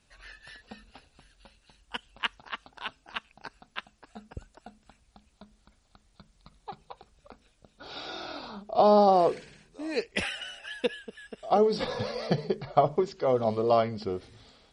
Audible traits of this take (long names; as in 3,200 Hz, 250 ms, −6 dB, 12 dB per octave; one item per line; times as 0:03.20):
a quantiser's noise floor 12 bits, dither triangular
MP3